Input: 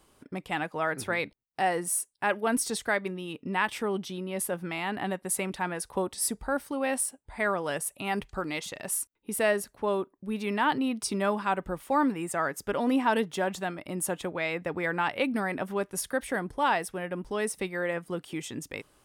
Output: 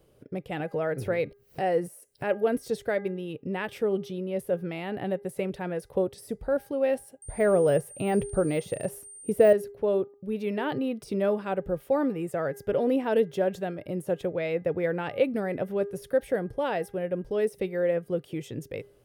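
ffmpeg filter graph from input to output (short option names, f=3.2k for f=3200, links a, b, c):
-filter_complex "[0:a]asettb=1/sr,asplit=3[a][b][c];[a]atrim=end=0.604[d];[b]atrim=start=0.6:end=2.43,asetpts=PTS-STARTPTS,afade=t=in:d=0.004:c=qsin,afade=t=out:st=1.826:d=0.004:c=qsin,bandreject=f=3.5k:w=11,acompressor=mode=upward:threshold=-28dB:ratio=2.5:attack=3.2:release=140:knee=2.83:detection=peak[e];[c]atrim=start=2.426[f];[d][e]acrossfade=d=0.004:c1=hsin:c2=qsin[g];[g][f]acrossfade=d=0.004:c1=qsin:c2=hsin,asettb=1/sr,asplit=3[h][i][j];[h]atrim=end=7.224[k];[i]atrim=start=7.22:end=9.53,asetpts=PTS-STARTPTS,afade=t=in:d=0.004:c=qsin,afade=t=out:st=2.306:d=0.004:c=qsin,acontrast=72,aeval=exprs='val(0)+0.0398*sin(2*PI*8800*n/s)':c=same[l];[j]atrim=start=9.526[m];[k][l]acrossfade=d=0.004:c1=hsin:c2=qsin[n];[n][m]acrossfade=d=0.004:c1=qsin:c2=hsin,bandreject=f=404.5:t=h:w=4,bandreject=f=809:t=h:w=4,bandreject=f=1.2135k:t=h:w=4,bandreject=f=1.618k:t=h:w=4,bandreject=f=2.0225k:t=h:w=4,deesser=0.65,equalizer=f=125:t=o:w=1:g=9,equalizer=f=250:t=o:w=1:g=-5,equalizer=f=500:t=o:w=1:g=11,equalizer=f=1k:t=o:w=1:g=-12,equalizer=f=2k:t=o:w=1:g=-3,equalizer=f=4k:t=o:w=1:g=-4,equalizer=f=8k:t=o:w=1:g=-10"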